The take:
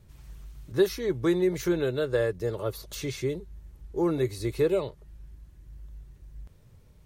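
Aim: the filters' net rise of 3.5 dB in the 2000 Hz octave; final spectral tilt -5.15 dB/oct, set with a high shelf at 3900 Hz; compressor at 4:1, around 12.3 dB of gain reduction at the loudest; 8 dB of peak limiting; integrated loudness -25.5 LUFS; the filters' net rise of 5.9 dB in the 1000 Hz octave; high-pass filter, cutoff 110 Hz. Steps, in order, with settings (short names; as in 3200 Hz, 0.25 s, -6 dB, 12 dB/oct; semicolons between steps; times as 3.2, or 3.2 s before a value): HPF 110 Hz; bell 1000 Hz +7 dB; bell 2000 Hz +3.5 dB; high shelf 3900 Hz -7.5 dB; compressor 4:1, threshold -32 dBFS; gain +14.5 dB; limiter -16 dBFS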